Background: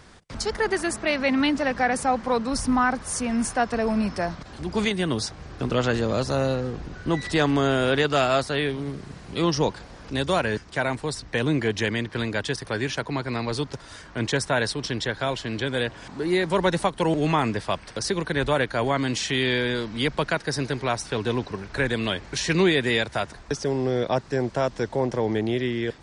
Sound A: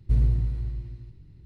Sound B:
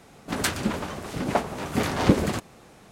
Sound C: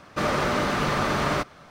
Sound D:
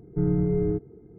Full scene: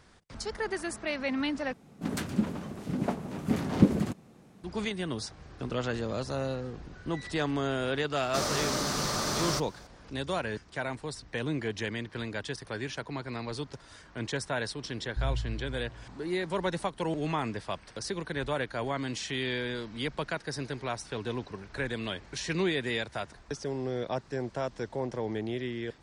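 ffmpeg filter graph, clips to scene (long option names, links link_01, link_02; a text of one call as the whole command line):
ffmpeg -i bed.wav -i cue0.wav -i cue1.wav -i cue2.wav -filter_complex "[0:a]volume=-9dB[link_01];[2:a]equalizer=frequency=190:width_type=o:width=2:gain=12.5[link_02];[3:a]highshelf=frequency=3700:width_type=q:width=1.5:gain=12[link_03];[1:a]acrossover=split=230[link_04][link_05];[link_04]adelay=290[link_06];[link_06][link_05]amix=inputs=2:normalize=0[link_07];[link_01]asplit=2[link_08][link_09];[link_08]atrim=end=1.734[link_10];[link_02]atrim=end=2.91,asetpts=PTS-STARTPTS,volume=-12dB[link_11];[link_09]atrim=start=4.636[link_12];[link_03]atrim=end=1.7,asetpts=PTS-STARTPTS,volume=-7.5dB,afade=type=in:duration=0.004:curve=hsin,afade=type=out:start_time=1.696:duration=0.004:curve=hsin,adelay=8170[link_13];[link_07]atrim=end=1.45,asetpts=PTS-STARTPTS,volume=-10dB,afade=type=in:duration=0.004:curve=hsin,afade=type=out:start_time=1.446:duration=0.004:curve=hsin,adelay=14780[link_14];[link_10][link_11]acrossfade=duration=0.004:curve1=hsin:curve2=hsin[link_15];[link_15][link_12]acrossfade=duration=0.004:curve1=hsin:curve2=hsin[link_16];[link_16][link_13][link_14]amix=inputs=3:normalize=0" out.wav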